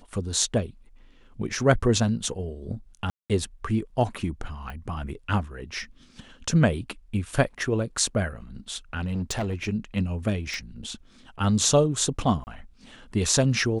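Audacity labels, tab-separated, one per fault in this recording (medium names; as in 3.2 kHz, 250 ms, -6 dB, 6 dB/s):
3.100000	3.300000	dropout 197 ms
4.700000	4.700000	pop -25 dBFS
8.990000	9.690000	clipped -24 dBFS
10.540000	10.540000	pop -20 dBFS
12.440000	12.470000	dropout 29 ms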